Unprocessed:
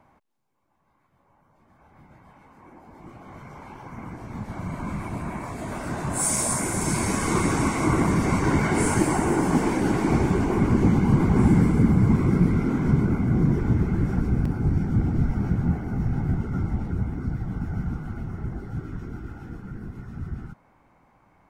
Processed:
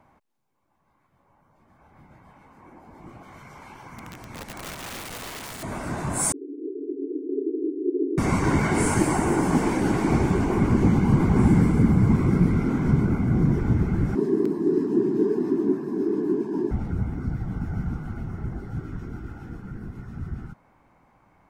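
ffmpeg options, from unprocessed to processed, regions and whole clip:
-filter_complex "[0:a]asettb=1/sr,asplit=3[a][b][c];[a]atrim=end=3.234[d];[b]atrim=start=3.23:end=5.63,asetpts=PTS-STARTPTS,afade=t=in:d=0.004:c=qsin,afade=t=out:st=2.396:d=0.004:c=qsin,tiltshelf=f=1.4k:g=-5,aeval=exprs='(mod(35.5*val(0)+1,2)-1)/35.5':c=same[e];[c]atrim=start=5.626[f];[d][e]acrossfade=d=0.004:c1=hsin:c2=qsin[g];[g][f]acrossfade=d=0.004:c1=qsin:c2=hsin,asettb=1/sr,asplit=3[h][i][j];[h]atrim=end=6.324[k];[i]atrim=start=6.32:end=8.18,asetpts=PTS-STARTPTS,afade=t=in:d=0.004:c=qsin,afade=t=out:st=1.856:d=0.004:c=qsin,afreqshift=46,asuperpass=centerf=350:order=20:qfactor=1.9[l];[j]atrim=start=8.176[m];[k][l]acrossfade=d=0.004:c1=hsin:c2=qsin[n];[n][m]acrossfade=d=0.004:c1=qsin:c2=hsin,asettb=1/sr,asplit=3[o][p][q];[o]atrim=end=14.154[r];[p]atrim=start=14.15:end=16.71,asetpts=PTS-STARTPTS,afade=t=in:d=0.004:c=qsin,afade=t=out:st=2.556:d=0.004:c=qsin,afreqshift=-450,highpass=f=150:w=0.5412,highpass=f=150:w=1.3066[s];[q]atrim=start=16.706[t];[r][s]acrossfade=d=0.004:c1=hsin:c2=qsin[u];[u][t]acrossfade=d=0.004:c1=qsin:c2=hsin"

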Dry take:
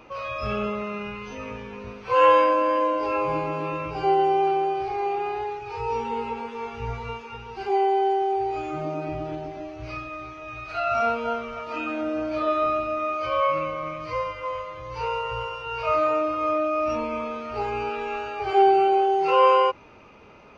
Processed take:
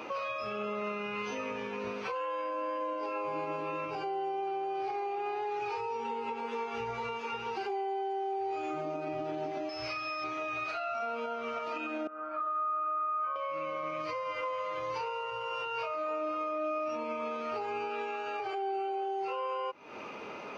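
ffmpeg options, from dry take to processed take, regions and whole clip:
-filter_complex "[0:a]asettb=1/sr,asplit=3[a][b][c];[a]atrim=end=9.694[d];[b]atrim=start=9.69:end=10.24,asetpts=PTS-STARTPTS,afade=t=in:d=0.004:c=qsin,afade=t=out:st=0.546:d=0.004:c=qsin,equalizer=f=270:w=0.57:g=-9,aeval=exprs='val(0)+0.00447*sin(2*PI*5200*n/s)':c=same[e];[c]atrim=start=10.236[f];[d][e]acrossfade=d=0.004:c1=hsin:c2=qsin[g];[g][f]acrossfade=d=0.004:c1=qsin:c2=hsin,asettb=1/sr,asplit=3[h][i][j];[h]atrim=end=12.074[k];[i]atrim=start=12.07:end=13.36,asetpts=PTS-STARTPTS,afade=t=in:d=0.004:c=qsin,afade=t=out:st=1.286:d=0.004:c=qsin,bandpass=f=1.3k:t=q:w=6.8,aemphasis=mode=reproduction:type=riaa[l];[j]atrim=start=13.356[m];[k][l]acrossfade=d=0.004:c1=hsin:c2=qsin[n];[n][m]acrossfade=d=0.004:c1=qsin:c2=hsin,highpass=240,acompressor=threshold=-34dB:ratio=6,alimiter=level_in=11dB:limit=-24dB:level=0:latency=1:release=286,volume=-11dB,volume=7.5dB"

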